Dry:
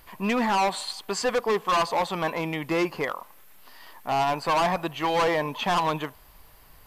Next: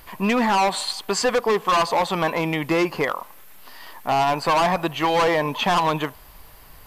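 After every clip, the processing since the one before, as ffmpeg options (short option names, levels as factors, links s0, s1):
-af "acompressor=threshold=0.0708:ratio=6,volume=2.11"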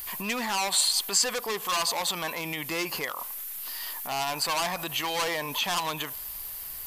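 -af "alimiter=limit=0.0794:level=0:latency=1:release=66,crystalizer=i=7.5:c=0,volume=0.447"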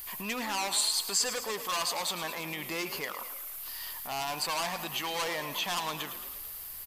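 -filter_complex "[0:a]asplit=8[s0][s1][s2][s3][s4][s5][s6][s7];[s1]adelay=109,afreqshift=38,volume=0.266[s8];[s2]adelay=218,afreqshift=76,volume=0.162[s9];[s3]adelay=327,afreqshift=114,volume=0.0989[s10];[s4]adelay=436,afreqshift=152,volume=0.0603[s11];[s5]adelay=545,afreqshift=190,volume=0.0367[s12];[s6]adelay=654,afreqshift=228,volume=0.0224[s13];[s7]adelay=763,afreqshift=266,volume=0.0136[s14];[s0][s8][s9][s10][s11][s12][s13][s14]amix=inputs=8:normalize=0,volume=0.596"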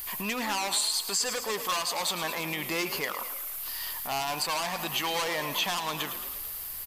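-af "alimiter=limit=0.0841:level=0:latency=1:release=250,volume=1.68"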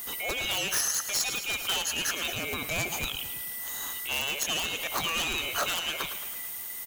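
-af "afftfilt=real='real(if(lt(b,920),b+92*(1-2*mod(floor(b/92),2)),b),0)':imag='imag(if(lt(b,920),b+92*(1-2*mod(floor(b/92),2)),b),0)':win_size=2048:overlap=0.75,aeval=exprs='(mod(8.41*val(0)+1,2)-1)/8.41':c=same"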